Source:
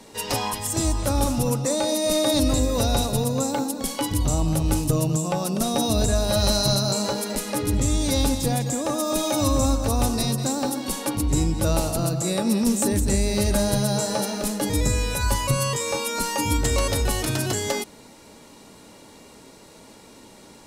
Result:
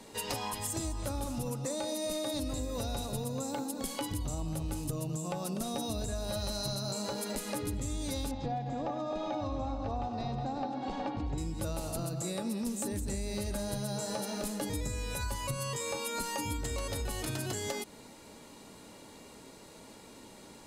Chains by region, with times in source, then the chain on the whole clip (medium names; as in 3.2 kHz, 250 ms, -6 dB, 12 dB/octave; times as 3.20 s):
8.31–11.38 s: Gaussian low-pass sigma 2.2 samples + peaking EQ 760 Hz +12.5 dB 0.29 oct + multi-tap echo 96/367 ms -12/-10 dB
whole clip: band-stop 5.6 kHz, Q 19; compression, threshold -28 dBFS; trim -4.5 dB